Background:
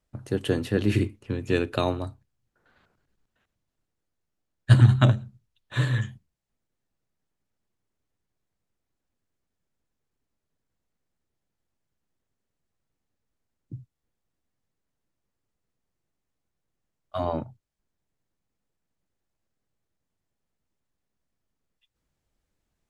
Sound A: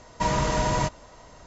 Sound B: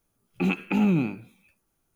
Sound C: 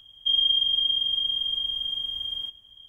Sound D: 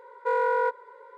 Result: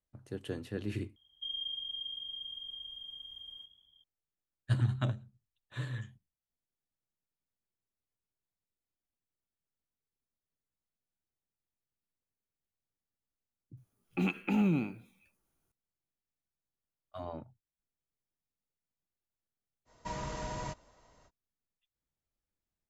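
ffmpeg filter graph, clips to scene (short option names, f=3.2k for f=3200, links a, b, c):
-filter_complex "[0:a]volume=-14dB[a];[3:a]asplit=4[b][c][d][e];[c]adelay=181,afreqshift=62,volume=-17.5dB[f];[d]adelay=362,afreqshift=124,volume=-27.7dB[g];[e]adelay=543,afreqshift=186,volume=-37.8dB[h];[b][f][g][h]amix=inputs=4:normalize=0[i];[a]asplit=2[j][k];[j]atrim=end=1.164[l];[i]atrim=end=2.88,asetpts=PTS-STARTPTS,volume=-17dB[m];[k]atrim=start=4.036[n];[2:a]atrim=end=1.95,asetpts=PTS-STARTPTS,volume=-6.5dB,afade=t=in:d=0.004:c=hsin,afade=t=out:st=1.946:d=0.004:c=hsin,adelay=13770[o];[1:a]atrim=end=1.46,asetpts=PTS-STARTPTS,volume=-15dB,afade=t=in:d=0.05,afade=t=out:st=1.41:d=0.05,adelay=19850[p];[l][m]acrossfade=d=0.004:c1=hsin:c2=hsin[q];[q][n]acrossfade=d=0.004:c1=hsin:c2=hsin[r];[r][o][p]amix=inputs=3:normalize=0"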